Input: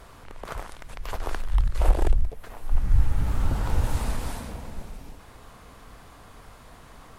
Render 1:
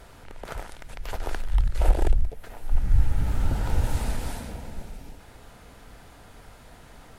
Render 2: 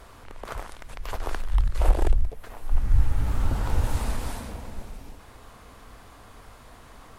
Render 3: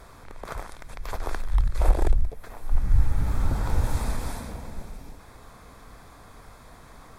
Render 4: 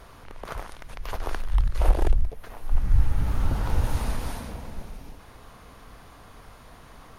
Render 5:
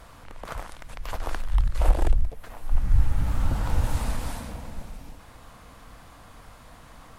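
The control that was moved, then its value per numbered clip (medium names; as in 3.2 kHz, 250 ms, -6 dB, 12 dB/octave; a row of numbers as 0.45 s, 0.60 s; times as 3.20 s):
band-stop, frequency: 1.1 kHz, 160 Hz, 2.9 kHz, 7.7 kHz, 400 Hz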